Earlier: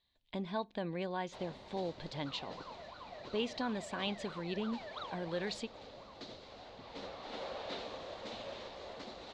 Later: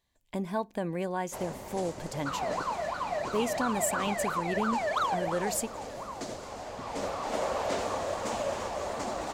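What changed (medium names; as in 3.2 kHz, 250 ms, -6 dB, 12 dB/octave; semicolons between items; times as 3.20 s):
speech -5.0 dB; second sound +7.5 dB; master: remove four-pole ladder low-pass 4.3 kHz, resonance 65%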